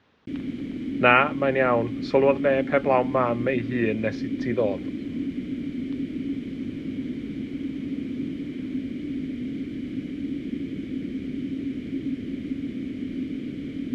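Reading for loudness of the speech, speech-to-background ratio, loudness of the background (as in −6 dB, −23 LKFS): −23.0 LKFS, 8.5 dB, −31.5 LKFS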